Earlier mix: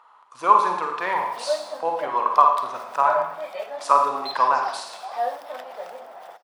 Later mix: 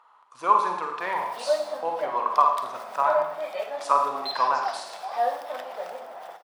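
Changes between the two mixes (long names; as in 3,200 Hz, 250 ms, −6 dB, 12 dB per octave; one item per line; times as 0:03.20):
speech −4.0 dB
background: send +10.5 dB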